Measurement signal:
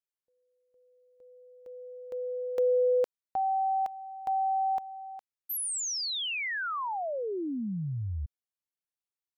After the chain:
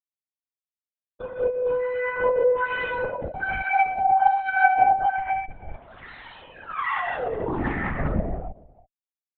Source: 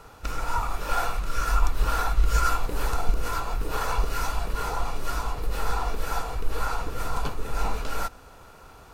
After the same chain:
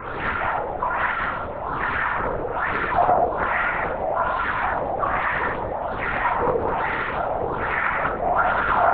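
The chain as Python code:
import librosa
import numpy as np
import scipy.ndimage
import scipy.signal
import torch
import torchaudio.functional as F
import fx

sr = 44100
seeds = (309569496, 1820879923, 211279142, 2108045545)

p1 = scipy.signal.sosfilt(scipy.signal.butter(2, 230.0, 'highpass', fs=sr, output='sos'), x)
p2 = fx.over_compress(p1, sr, threshold_db=-37.0, ratio=-1.0)
p3 = p1 + F.gain(torch.from_numpy(p2), 0.0).numpy()
p4 = fx.tube_stage(p3, sr, drive_db=33.0, bias=0.8)
p5 = fx.schmitt(p4, sr, flips_db=-52.5)
p6 = fx.filter_lfo_lowpass(p5, sr, shape='sine', hz=1.2, low_hz=530.0, high_hz=1900.0, q=6.9)
p7 = fx.phaser_stages(p6, sr, stages=6, low_hz=310.0, high_hz=2000.0, hz=1.9, feedback_pct=50)
p8 = p7 + fx.echo_single(p7, sr, ms=325, db=-21.5, dry=0)
p9 = fx.rev_gated(p8, sr, seeds[0], gate_ms=280, shape='flat', drr_db=-5.5)
p10 = fx.lpc_vocoder(p9, sr, seeds[1], excitation='whisper', order=16)
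p11 = fx.doppler_dist(p10, sr, depth_ms=0.39)
y = F.gain(torch.from_numpy(p11), 5.0).numpy()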